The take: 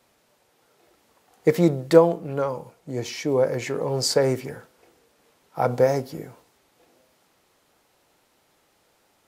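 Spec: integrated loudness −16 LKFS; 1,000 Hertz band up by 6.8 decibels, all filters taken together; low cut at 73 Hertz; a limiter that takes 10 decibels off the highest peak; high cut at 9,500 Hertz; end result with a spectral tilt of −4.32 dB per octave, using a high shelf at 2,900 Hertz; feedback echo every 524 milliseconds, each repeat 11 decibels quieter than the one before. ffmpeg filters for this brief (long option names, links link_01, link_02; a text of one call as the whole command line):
ffmpeg -i in.wav -af "highpass=73,lowpass=9500,equalizer=frequency=1000:width_type=o:gain=8,highshelf=frequency=2900:gain=7.5,alimiter=limit=-9.5dB:level=0:latency=1,aecho=1:1:524|1048|1572:0.282|0.0789|0.0221,volume=7.5dB" out.wav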